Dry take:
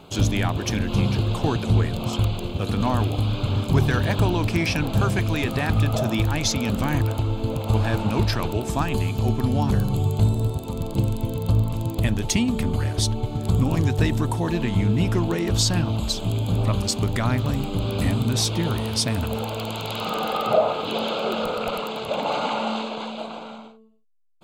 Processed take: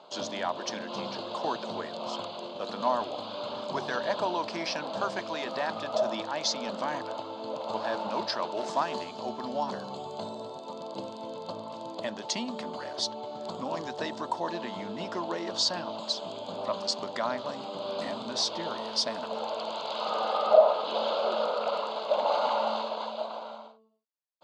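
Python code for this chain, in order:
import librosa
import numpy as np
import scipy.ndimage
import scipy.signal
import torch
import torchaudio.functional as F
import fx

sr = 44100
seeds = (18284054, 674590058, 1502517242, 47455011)

y = fx.zero_step(x, sr, step_db=-30.5, at=(8.57, 9.04))
y = fx.cabinet(y, sr, low_hz=260.0, low_slope=24, high_hz=6200.0, hz=(290.0, 410.0, 600.0, 980.0, 2400.0, 4600.0), db=(-9, -5, 9, 7, -8, 6))
y = F.gain(torch.from_numpy(y), -6.0).numpy()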